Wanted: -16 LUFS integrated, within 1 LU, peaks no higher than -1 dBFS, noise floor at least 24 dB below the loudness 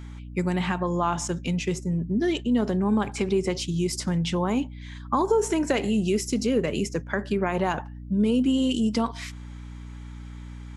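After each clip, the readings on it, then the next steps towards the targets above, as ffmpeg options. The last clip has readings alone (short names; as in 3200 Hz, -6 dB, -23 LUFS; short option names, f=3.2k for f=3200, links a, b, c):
hum 60 Hz; harmonics up to 300 Hz; hum level -37 dBFS; loudness -25.5 LUFS; peak -11.0 dBFS; loudness target -16.0 LUFS
-> -af "bandreject=f=60:t=h:w=4,bandreject=f=120:t=h:w=4,bandreject=f=180:t=h:w=4,bandreject=f=240:t=h:w=4,bandreject=f=300:t=h:w=4"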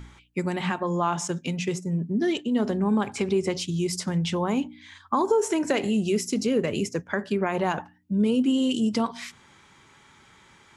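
hum none; loudness -26.0 LUFS; peak -11.5 dBFS; loudness target -16.0 LUFS
-> -af "volume=10dB"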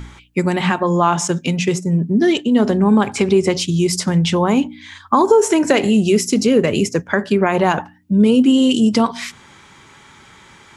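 loudness -16.0 LUFS; peak -1.5 dBFS; noise floor -46 dBFS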